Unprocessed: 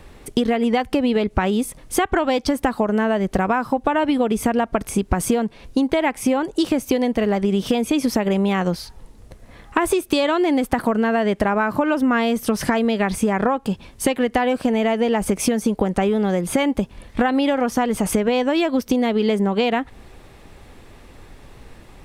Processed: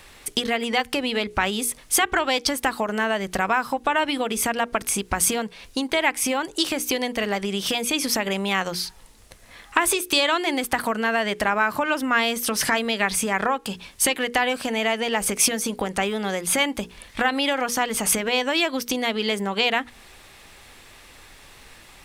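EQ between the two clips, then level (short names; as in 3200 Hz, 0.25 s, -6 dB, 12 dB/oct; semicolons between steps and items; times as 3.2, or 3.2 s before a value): tilt shelf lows -8.5 dB; notches 60/120/180/240/300/360/420/480 Hz; -1.0 dB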